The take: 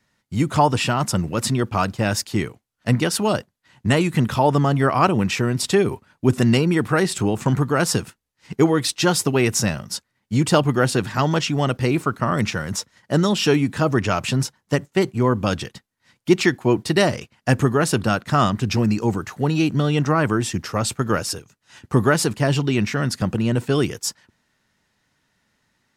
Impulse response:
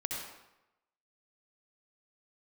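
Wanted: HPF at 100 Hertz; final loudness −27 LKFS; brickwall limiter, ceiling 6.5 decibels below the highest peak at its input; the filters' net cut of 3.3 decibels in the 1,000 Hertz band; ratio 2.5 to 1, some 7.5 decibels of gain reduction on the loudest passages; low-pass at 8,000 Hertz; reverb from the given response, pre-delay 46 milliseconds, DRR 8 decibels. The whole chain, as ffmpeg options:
-filter_complex "[0:a]highpass=100,lowpass=8000,equalizer=frequency=1000:width_type=o:gain=-4.5,acompressor=threshold=-22dB:ratio=2.5,alimiter=limit=-15dB:level=0:latency=1,asplit=2[link_01][link_02];[1:a]atrim=start_sample=2205,adelay=46[link_03];[link_02][link_03]afir=irnorm=-1:irlink=0,volume=-11dB[link_04];[link_01][link_04]amix=inputs=2:normalize=0,volume=-0.5dB"

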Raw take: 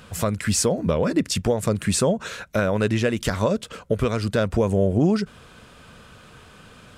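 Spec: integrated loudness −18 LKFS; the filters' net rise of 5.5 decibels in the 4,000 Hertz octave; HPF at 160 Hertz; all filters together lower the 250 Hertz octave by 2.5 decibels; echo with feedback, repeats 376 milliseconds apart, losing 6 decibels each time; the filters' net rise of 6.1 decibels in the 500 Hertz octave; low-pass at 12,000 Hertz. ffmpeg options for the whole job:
ffmpeg -i in.wav -af "highpass=160,lowpass=12000,equalizer=frequency=250:width_type=o:gain=-4.5,equalizer=frequency=500:width_type=o:gain=8,equalizer=frequency=4000:width_type=o:gain=7,aecho=1:1:376|752|1128|1504|1880|2256:0.501|0.251|0.125|0.0626|0.0313|0.0157,volume=0.5dB" out.wav

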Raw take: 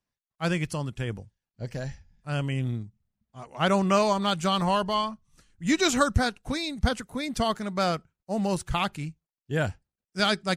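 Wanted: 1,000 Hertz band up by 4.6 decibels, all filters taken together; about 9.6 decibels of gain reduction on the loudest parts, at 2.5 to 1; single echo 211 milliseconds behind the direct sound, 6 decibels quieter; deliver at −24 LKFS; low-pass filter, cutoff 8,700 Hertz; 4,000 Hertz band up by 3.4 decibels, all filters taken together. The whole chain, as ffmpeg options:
ffmpeg -i in.wav -af "lowpass=8700,equalizer=frequency=1000:width_type=o:gain=5.5,equalizer=frequency=4000:width_type=o:gain=4,acompressor=threshold=-29dB:ratio=2.5,aecho=1:1:211:0.501,volume=7.5dB" out.wav

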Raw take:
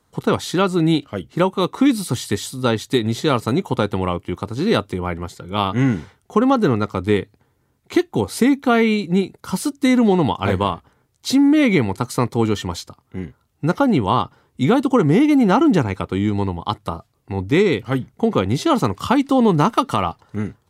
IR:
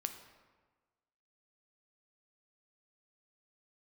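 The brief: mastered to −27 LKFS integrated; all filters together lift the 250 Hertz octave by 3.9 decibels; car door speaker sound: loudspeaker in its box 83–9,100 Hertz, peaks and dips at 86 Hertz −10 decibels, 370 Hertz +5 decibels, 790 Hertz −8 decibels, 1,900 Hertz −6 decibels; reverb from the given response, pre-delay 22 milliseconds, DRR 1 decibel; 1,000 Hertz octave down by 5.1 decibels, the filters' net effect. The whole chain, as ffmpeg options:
-filter_complex "[0:a]equalizer=frequency=250:width_type=o:gain=4,equalizer=frequency=1000:width_type=o:gain=-3,asplit=2[link_01][link_02];[1:a]atrim=start_sample=2205,adelay=22[link_03];[link_02][link_03]afir=irnorm=-1:irlink=0,volume=-0.5dB[link_04];[link_01][link_04]amix=inputs=2:normalize=0,highpass=83,equalizer=frequency=86:width_type=q:width=4:gain=-10,equalizer=frequency=370:width_type=q:width=4:gain=5,equalizer=frequency=790:width_type=q:width=4:gain=-8,equalizer=frequency=1900:width_type=q:width=4:gain=-6,lowpass=frequency=9100:width=0.5412,lowpass=frequency=9100:width=1.3066,volume=-13.5dB"

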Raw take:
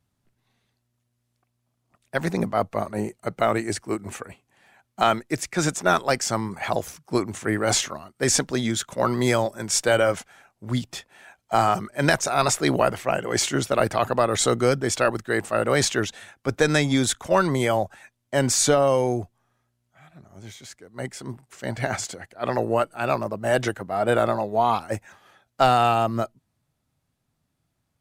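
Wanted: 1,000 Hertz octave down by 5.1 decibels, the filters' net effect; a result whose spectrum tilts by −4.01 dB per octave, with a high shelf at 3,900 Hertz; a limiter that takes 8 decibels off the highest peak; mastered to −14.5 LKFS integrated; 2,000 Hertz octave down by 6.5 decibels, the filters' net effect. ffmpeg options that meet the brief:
ffmpeg -i in.wav -af "equalizer=frequency=1000:width_type=o:gain=-6,equalizer=frequency=2000:width_type=o:gain=-7.5,highshelf=frequency=3900:gain=5,volume=12dB,alimiter=limit=-1dB:level=0:latency=1" out.wav

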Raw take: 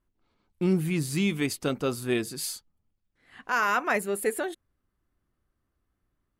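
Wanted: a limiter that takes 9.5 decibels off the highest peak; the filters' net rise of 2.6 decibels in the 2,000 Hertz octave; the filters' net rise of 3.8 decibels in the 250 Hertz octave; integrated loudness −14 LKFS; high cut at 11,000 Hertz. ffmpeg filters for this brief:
ffmpeg -i in.wav -af "lowpass=11000,equalizer=frequency=250:width_type=o:gain=5.5,equalizer=frequency=2000:width_type=o:gain=3.5,volume=17dB,alimiter=limit=-4dB:level=0:latency=1" out.wav

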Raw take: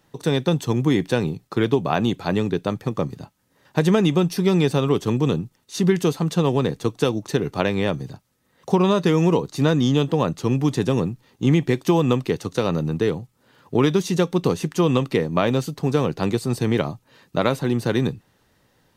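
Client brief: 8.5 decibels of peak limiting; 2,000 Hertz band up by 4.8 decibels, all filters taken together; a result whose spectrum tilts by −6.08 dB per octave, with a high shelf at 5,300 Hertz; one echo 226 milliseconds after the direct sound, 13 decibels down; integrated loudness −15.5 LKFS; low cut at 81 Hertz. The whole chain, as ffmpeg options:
ffmpeg -i in.wav -af "highpass=81,equalizer=frequency=2000:width_type=o:gain=7.5,highshelf=frequency=5300:gain=-8.5,alimiter=limit=-9.5dB:level=0:latency=1,aecho=1:1:226:0.224,volume=7dB" out.wav

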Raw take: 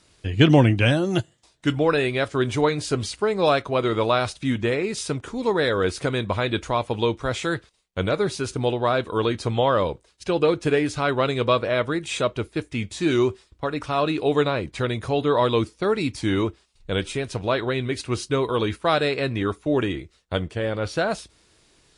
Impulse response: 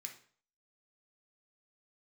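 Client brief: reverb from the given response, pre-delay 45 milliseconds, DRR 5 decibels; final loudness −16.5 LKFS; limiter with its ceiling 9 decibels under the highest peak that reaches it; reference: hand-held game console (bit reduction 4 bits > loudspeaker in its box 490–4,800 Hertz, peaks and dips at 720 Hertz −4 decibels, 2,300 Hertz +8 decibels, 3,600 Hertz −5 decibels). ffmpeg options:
-filter_complex "[0:a]alimiter=limit=-13dB:level=0:latency=1,asplit=2[link_01][link_02];[1:a]atrim=start_sample=2205,adelay=45[link_03];[link_02][link_03]afir=irnorm=-1:irlink=0,volume=-0.5dB[link_04];[link_01][link_04]amix=inputs=2:normalize=0,acrusher=bits=3:mix=0:aa=0.000001,highpass=490,equalizer=frequency=720:width_type=q:width=4:gain=-4,equalizer=frequency=2300:width_type=q:width=4:gain=8,equalizer=frequency=3600:width_type=q:width=4:gain=-5,lowpass=frequency=4800:width=0.5412,lowpass=frequency=4800:width=1.3066,volume=8.5dB"

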